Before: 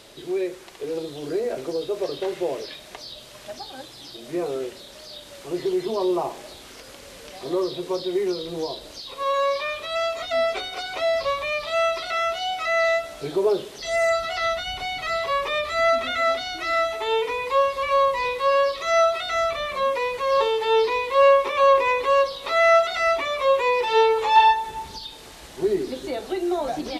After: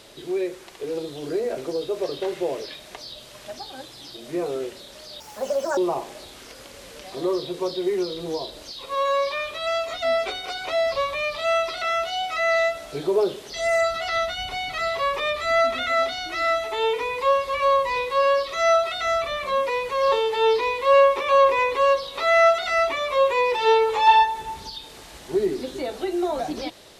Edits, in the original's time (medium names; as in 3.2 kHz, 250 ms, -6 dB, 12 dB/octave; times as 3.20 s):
5.20–6.06 s: speed 150%